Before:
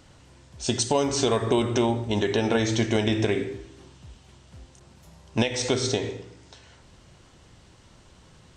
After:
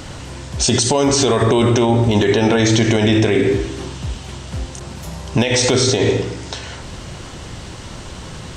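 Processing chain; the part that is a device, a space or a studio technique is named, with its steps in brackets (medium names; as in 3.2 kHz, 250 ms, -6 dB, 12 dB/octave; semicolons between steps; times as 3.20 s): loud club master (compression 1.5:1, threshold -33 dBFS, peak gain reduction 6 dB; hard clipper -17 dBFS, distortion -38 dB; loudness maximiser +26 dB); trim -5 dB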